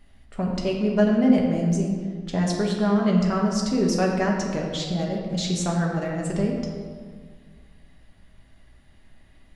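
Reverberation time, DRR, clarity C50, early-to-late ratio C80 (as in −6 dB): 1.8 s, −1.5 dB, 2.0 dB, 4.0 dB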